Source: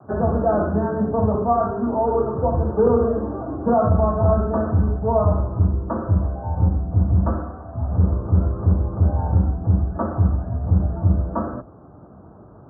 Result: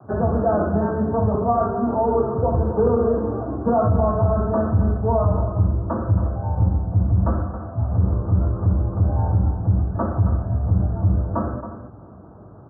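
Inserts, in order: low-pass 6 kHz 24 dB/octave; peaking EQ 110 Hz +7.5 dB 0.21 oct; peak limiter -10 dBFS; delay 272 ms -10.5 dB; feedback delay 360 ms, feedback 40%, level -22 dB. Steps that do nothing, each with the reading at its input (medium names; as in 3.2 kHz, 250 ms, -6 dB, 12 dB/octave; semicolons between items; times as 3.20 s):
low-pass 6 kHz: input has nothing above 1.1 kHz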